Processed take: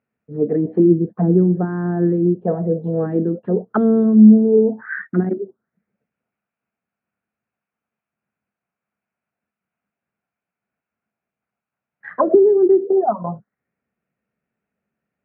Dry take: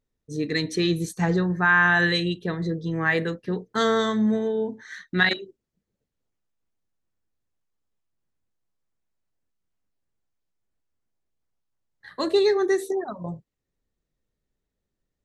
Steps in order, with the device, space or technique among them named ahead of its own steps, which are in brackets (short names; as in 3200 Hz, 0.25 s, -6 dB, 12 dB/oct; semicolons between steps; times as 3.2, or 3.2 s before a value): 2.83–4.05 band shelf 4300 Hz +16 dB 1.3 oct; envelope filter bass rig (envelope low-pass 330–2500 Hz down, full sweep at -20.5 dBFS; speaker cabinet 88–2300 Hz, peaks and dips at 100 Hz -8 dB, 210 Hz +8 dB, 320 Hz -4 dB, 700 Hz +7 dB, 1400 Hz +7 dB, 2000 Hz -4 dB); gain +3 dB